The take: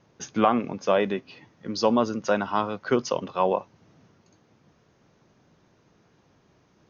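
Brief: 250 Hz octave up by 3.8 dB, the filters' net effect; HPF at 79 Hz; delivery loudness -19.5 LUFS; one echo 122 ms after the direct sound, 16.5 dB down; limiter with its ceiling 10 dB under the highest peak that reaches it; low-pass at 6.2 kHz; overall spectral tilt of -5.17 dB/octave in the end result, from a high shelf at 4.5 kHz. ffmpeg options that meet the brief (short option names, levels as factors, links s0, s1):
-af "highpass=79,lowpass=6200,equalizer=f=250:t=o:g=4.5,highshelf=f=4500:g=-4,alimiter=limit=0.178:level=0:latency=1,aecho=1:1:122:0.15,volume=2.66"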